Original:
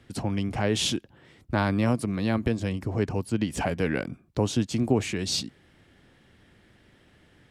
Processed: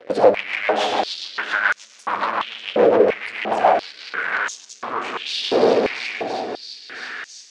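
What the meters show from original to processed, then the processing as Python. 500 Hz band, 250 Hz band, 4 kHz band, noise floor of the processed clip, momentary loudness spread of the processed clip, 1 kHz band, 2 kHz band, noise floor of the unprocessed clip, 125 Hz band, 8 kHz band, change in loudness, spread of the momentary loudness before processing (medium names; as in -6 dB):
+12.5 dB, -2.5 dB, +6.0 dB, -46 dBFS, 14 LU, +14.5 dB, +13.5 dB, -60 dBFS, -15.0 dB, -2.5 dB, +6.5 dB, 6 LU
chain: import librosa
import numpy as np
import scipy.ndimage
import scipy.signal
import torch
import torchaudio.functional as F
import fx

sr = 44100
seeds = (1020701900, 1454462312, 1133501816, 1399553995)

p1 = x + fx.echo_heads(x, sr, ms=335, heads='all three', feedback_pct=52, wet_db=-19.5, dry=0)
p2 = fx.room_shoebox(p1, sr, seeds[0], volume_m3=140.0, walls='hard', distance_m=0.43)
p3 = fx.over_compress(p2, sr, threshold_db=-27.0, ratio=-0.5)
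p4 = p2 + (p3 * librosa.db_to_amplitude(1.0))
p5 = fx.leveller(p4, sr, passes=5)
p6 = fx.rotary_switch(p5, sr, hz=7.0, then_hz=0.65, switch_at_s=3.59)
p7 = fx.spacing_loss(p6, sr, db_at_10k=30)
p8 = fx.filter_held_highpass(p7, sr, hz=2.9, low_hz=520.0, high_hz=6400.0)
y = p8 * librosa.db_to_amplitude(-1.5)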